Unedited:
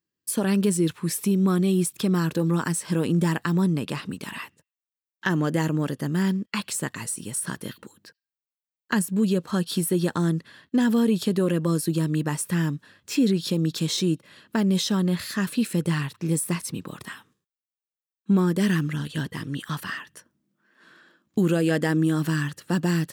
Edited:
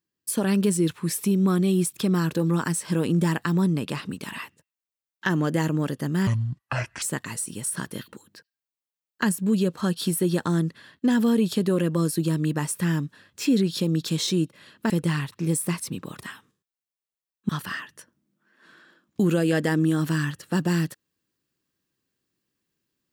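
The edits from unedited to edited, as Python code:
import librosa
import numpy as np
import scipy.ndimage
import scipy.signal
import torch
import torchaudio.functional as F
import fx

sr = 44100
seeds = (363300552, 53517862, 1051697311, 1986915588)

y = fx.edit(x, sr, fx.speed_span(start_s=6.27, length_s=0.45, speed=0.6),
    fx.cut(start_s=14.6, length_s=1.12),
    fx.cut(start_s=18.31, length_s=1.36), tone=tone)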